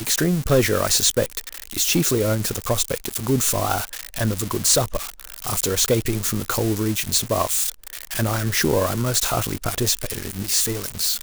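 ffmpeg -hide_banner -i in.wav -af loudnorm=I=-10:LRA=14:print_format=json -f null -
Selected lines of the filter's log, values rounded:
"input_i" : "-21.1",
"input_tp" : "-7.8",
"input_lra" : "0.7",
"input_thresh" : "-31.2",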